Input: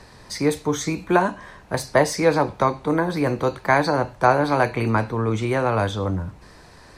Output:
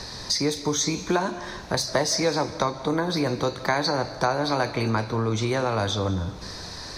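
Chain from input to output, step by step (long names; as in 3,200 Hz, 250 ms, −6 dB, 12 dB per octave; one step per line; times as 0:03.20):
flat-topped bell 4,800 Hz +11 dB 1 octave
downward compressor 2.5 to 1, threshold −33 dBFS, peak gain reduction 15 dB
convolution reverb RT60 1.4 s, pre-delay 115 ms, DRR 13.5 dB
level +6.5 dB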